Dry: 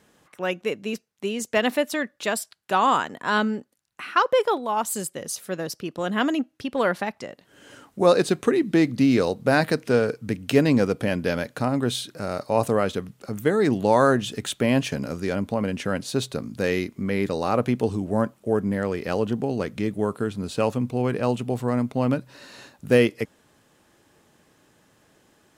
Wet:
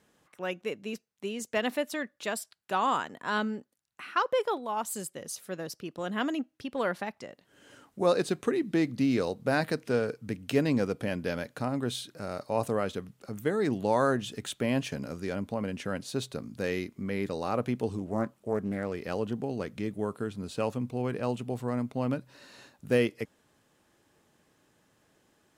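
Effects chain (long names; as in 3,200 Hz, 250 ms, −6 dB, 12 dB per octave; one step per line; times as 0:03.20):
0:17.98–0:18.93: highs frequency-modulated by the lows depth 0.28 ms
level −7.5 dB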